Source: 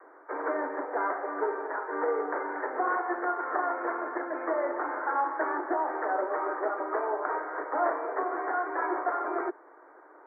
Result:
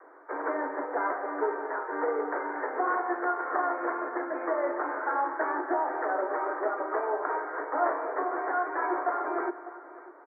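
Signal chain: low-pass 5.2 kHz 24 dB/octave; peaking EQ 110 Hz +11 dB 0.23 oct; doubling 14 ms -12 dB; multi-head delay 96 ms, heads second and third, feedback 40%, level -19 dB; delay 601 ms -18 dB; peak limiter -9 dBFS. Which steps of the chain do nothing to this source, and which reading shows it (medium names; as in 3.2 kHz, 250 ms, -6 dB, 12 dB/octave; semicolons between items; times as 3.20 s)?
low-pass 5.2 kHz: input has nothing above 2.2 kHz; peaking EQ 110 Hz: input has nothing below 240 Hz; peak limiter -9 dBFS: peak at its input -13.5 dBFS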